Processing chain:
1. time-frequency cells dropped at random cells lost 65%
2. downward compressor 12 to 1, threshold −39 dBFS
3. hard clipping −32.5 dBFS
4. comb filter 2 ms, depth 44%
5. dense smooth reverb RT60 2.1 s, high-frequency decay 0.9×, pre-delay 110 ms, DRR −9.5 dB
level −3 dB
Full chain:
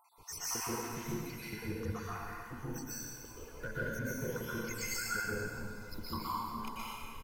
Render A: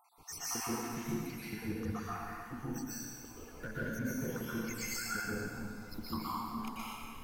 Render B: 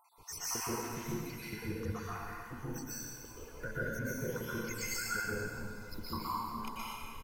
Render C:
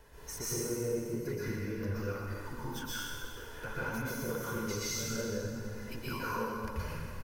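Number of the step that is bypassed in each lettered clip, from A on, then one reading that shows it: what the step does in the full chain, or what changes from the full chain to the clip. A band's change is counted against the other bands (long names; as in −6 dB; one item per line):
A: 4, 250 Hz band +4.5 dB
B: 3, distortion level −22 dB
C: 1, 500 Hz band +4.0 dB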